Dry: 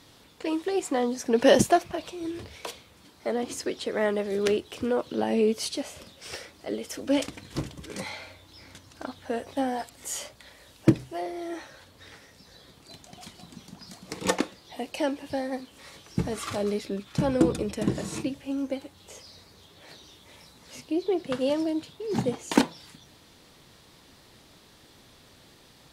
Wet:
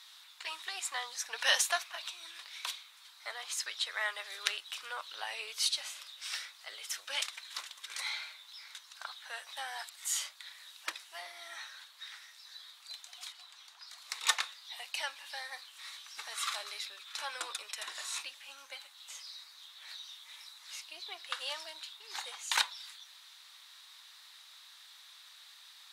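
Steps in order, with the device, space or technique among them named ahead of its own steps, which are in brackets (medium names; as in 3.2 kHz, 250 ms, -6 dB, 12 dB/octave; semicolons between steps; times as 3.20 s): headphones lying on a table (high-pass 1.1 kHz 24 dB/octave; peaking EQ 3.8 kHz +8 dB 0.22 oct); 13.32–13.98 s: treble shelf 4.2 kHz -7.5 dB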